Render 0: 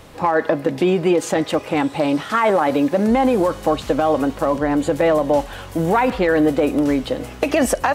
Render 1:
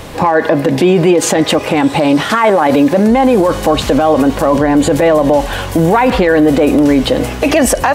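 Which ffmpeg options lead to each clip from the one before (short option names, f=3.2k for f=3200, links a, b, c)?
-af "bandreject=f=1.3k:w=16,alimiter=level_in=15dB:limit=-1dB:release=50:level=0:latency=1,volume=-1dB"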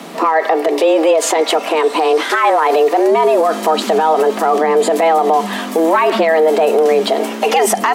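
-af "afreqshift=160,volume=-2.5dB"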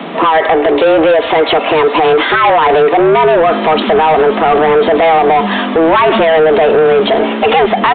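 -af "asoftclip=type=tanh:threshold=-13.5dB,aresample=8000,aresample=44100,volume=8.5dB"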